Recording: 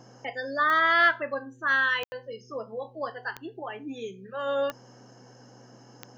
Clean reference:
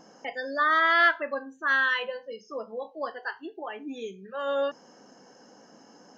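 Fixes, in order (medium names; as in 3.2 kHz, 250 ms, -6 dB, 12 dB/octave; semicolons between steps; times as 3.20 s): de-click; de-hum 124 Hz, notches 4; room tone fill 2.04–2.12 s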